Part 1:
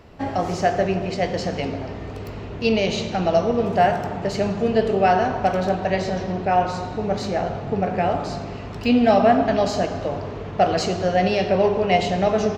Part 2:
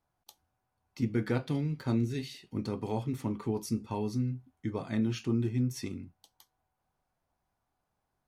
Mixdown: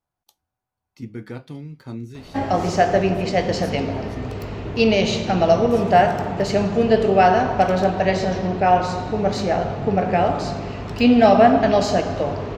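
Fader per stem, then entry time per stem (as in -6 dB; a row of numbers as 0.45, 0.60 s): +3.0, -3.5 dB; 2.15, 0.00 s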